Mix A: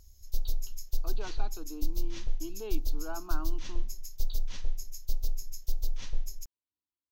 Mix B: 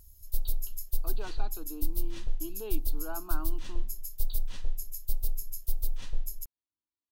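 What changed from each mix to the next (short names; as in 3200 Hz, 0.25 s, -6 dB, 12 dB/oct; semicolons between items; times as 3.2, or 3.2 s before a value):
background: add resonant high shelf 7600 Hz +7.5 dB, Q 3; master: add notch 2200 Hz, Q 11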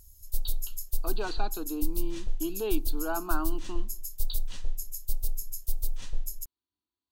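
speech +8.5 dB; master: add bell 7400 Hz +6 dB 0.94 oct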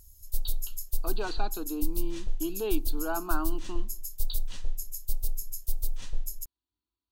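speech: remove HPF 100 Hz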